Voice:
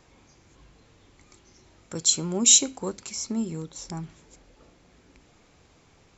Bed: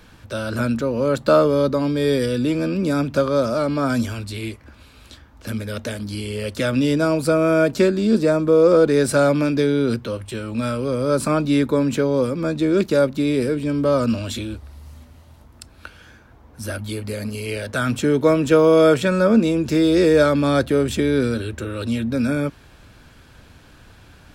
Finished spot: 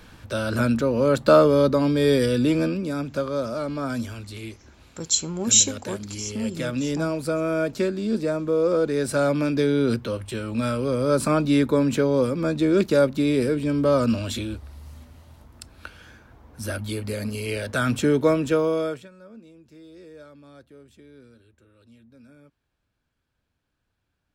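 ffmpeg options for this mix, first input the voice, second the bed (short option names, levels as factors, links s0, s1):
-filter_complex "[0:a]adelay=3050,volume=0.944[s0];[1:a]volume=2,afade=t=out:st=2.62:d=0.2:silence=0.421697,afade=t=in:st=8.94:d=0.96:silence=0.501187,afade=t=out:st=18.07:d=1.02:silence=0.0354813[s1];[s0][s1]amix=inputs=2:normalize=0"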